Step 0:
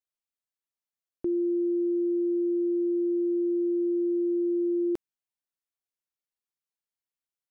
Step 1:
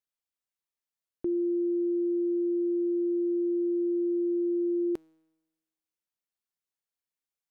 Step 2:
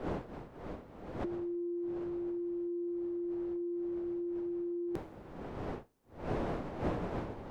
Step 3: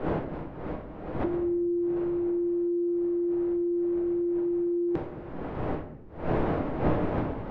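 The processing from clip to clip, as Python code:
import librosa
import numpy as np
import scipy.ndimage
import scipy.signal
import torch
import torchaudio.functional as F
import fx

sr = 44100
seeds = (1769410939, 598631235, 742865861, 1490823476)

y1 = fx.comb_fb(x, sr, f0_hz=160.0, decay_s=1.1, harmonics='all', damping=0.0, mix_pct=50)
y1 = F.gain(torch.from_numpy(y1), 4.5).numpy()
y2 = fx.dmg_wind(y1, sr, seeds[0], corner_hz=530.0, level_db=-46.0)
y2 = fx.over_compress(y2, sr, threshold_db=-33.0, ratio=-0.5)
y3 = scipy.signal.sosfilt(scipy.signal.butter(2, 2800.0, 'lowpass', fs=sr, output='sos'), y2)
y3 = fx.room_shoebox(y3, sr, seeds[1], volume_m3=220.0, walls='mixed', distance_m=0.54)
y3 = F.gain(torch.from_numpy(y3), 7.5).numpy()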